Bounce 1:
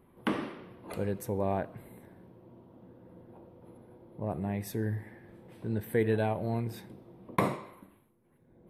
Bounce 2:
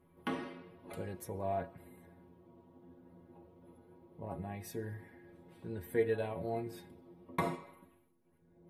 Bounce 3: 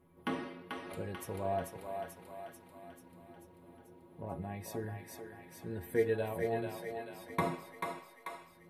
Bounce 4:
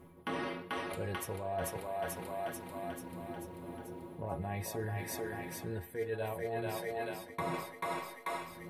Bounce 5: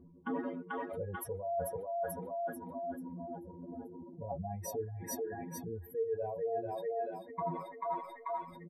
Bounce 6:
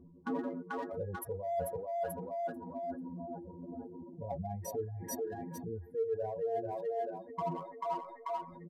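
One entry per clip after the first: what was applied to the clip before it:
metallic resonator 83 Hz, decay 0.25 s, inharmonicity 0.008; gain +2.5 dB
thinning echo 0.439 s, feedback 64%, high-pass 620 Hz, level -3 dB; gain +1 dB
dynamic EQ 240 Hz, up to -6 dB, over -52 dBFS, Q 1.2; reverse; compressor 8:1, threshold -46 dBFS, peak gain reduction 19 dB; reverse; gain +11.5 dB
spectral contrast raised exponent 2.5; comb 4.1 ms, depth 56%
Wiener smoothing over 15 samples; gain +1 dB

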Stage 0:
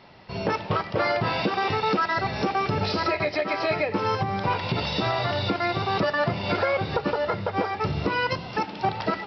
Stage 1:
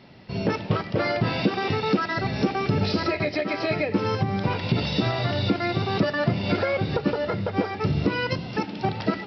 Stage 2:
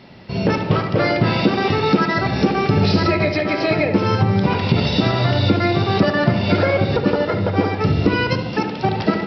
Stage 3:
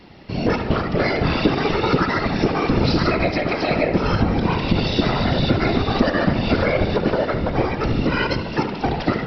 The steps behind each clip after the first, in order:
ten-band EQ 125 Hz +4 dB, 250 Hz +6 dB, 1000 Hz -6 dB
darkening echo 72 ms, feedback 67%, low-pass 1700 Hz, level -6.5 dB; gain +6 dB
whisperiser; on a send at -15.5 dB: reverb RT60 5.4 s, pre-delay 56 ms; on the sum: gain -2 dB

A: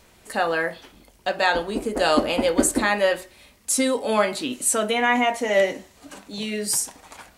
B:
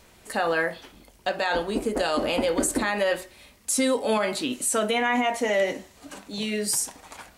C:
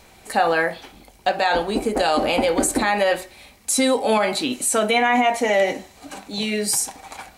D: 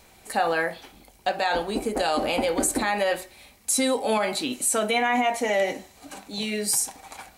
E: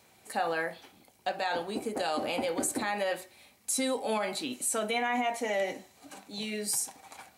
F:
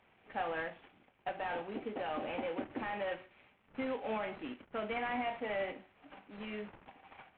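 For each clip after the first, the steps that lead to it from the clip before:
limiter -14.5 dBFS, peak gain reduction 9 dB
small resonant body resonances 780/2300/4000 Hz, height 9 dB, ringing for 35 ms; gain +4 dB
high shelf 8800 Hz +6 dB; gain -5 dB
HPF 86 Hz 24 dB/oct; gain -7 dB
CVSD 16 kbps; gain -6 dB

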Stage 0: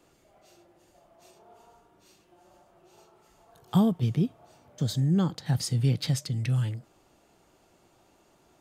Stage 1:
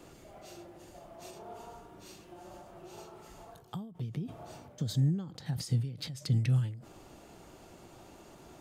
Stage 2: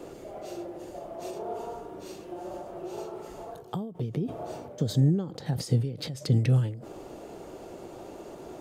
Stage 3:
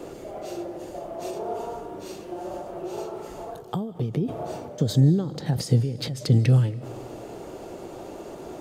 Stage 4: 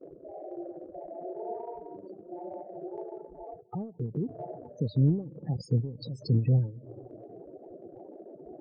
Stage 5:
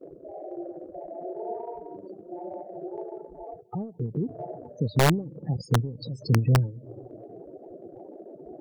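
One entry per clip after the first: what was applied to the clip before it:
low shelf 390 Hz +4.5 dB; reverse; compressor 8:1, threshold -31 dBFS, peak gain reduction 17 dB; reverse; ending taper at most 100 dB/s; gain +7.5 dB
bell 460 Hz +12 dB 1.6 oct; gain +3 dB
digital reverb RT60 1.4 s, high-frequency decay 0.95×, pre-delay 0.115 s, DRR 18.5 dB; gain +4.5 dB
expander -36 dBFS; loudest bins only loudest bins 16; transient shaper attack -2 dB, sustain -7 dB; gain -5 dB
wrapped overs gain 16.5 dB; gain +3 dB

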